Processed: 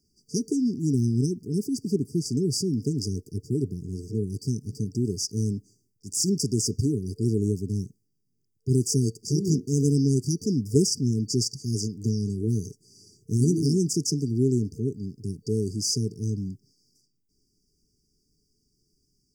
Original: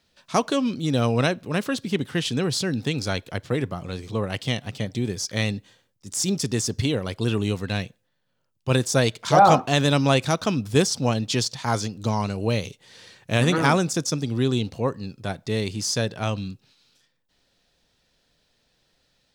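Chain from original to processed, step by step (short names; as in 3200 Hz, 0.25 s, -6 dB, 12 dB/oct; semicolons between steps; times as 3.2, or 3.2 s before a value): FFT band-reject 450–4600 Hz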